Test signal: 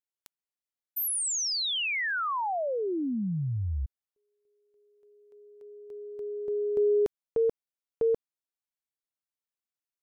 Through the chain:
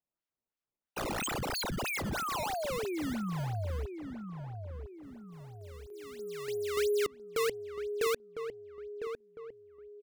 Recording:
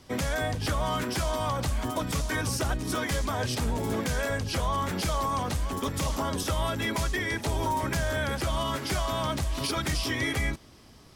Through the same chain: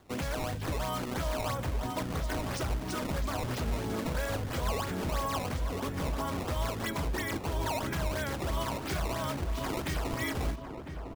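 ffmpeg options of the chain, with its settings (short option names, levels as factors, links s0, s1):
-filter_complex "[0:a]acrusher=samples=16:mix=1:aa=0.000001:lfo=1:lforange=25.6:lforate=3,asplit=2[s0][s1];[s1]adelay=1004,lowpass=f=1200:p=1,volume=0.447,asplit=2[s2][s3];[s3]adelay=1004,lowpass=f=1200:p=1,volume=0.47,asplit=2[s4][s5];[s5]adelay=1004,lowpass=f=1200:p=1,volume=0.47,asplit=2[s6][s7];[s7]adelay=1004,lowpass=f=1200:p=1,volume=0.47,asplit=2[s8][s9];[s9]adelay=1004,lowpass=f=1200:p=1,volume=0.47,asplit=2[s10][s11];[s11]adelay=1004,lowpass=f=1200:p=1,volume=0.47[s12];[s0][s2][s4][s6][s8][s10][s12]amix=inputs=7:normalize=0,volume=0.562"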